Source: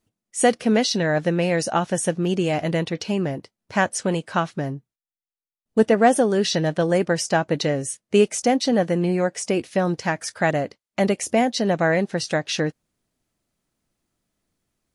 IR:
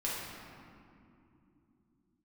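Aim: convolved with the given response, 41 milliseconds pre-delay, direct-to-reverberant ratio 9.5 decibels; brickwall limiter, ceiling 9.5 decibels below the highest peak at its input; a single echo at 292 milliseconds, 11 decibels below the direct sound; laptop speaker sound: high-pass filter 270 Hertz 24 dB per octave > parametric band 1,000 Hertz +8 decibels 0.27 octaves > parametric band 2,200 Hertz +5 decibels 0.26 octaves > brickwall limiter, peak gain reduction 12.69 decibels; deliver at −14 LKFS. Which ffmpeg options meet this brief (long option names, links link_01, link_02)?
-filter_complex "[0:a]alimiter=limit=-13.5dB:level=0:latency=1,aecho=1:1:292:0.282,asplit=2[link_01][link_02];[1:a]atrim=start_sample=2205,adelay=41[link_03];[link_02][link_03]afir=irnorm=-1:irlink=0,volume=-14.5dB[link_04];[link_01][link_04]amix=inputs=2:normalize=0,highpass=frequency=270:width=0.5412,highpass=frequency=270:width=1.3066,equalizer=frequency=1000:width_type=o:width=0.27:gain=8,equalizer=frequency=2200:width_type=o:width=0.26:gain=5,volume=17dB,alimiter=limit=-4.5dB:level=0:latency=1"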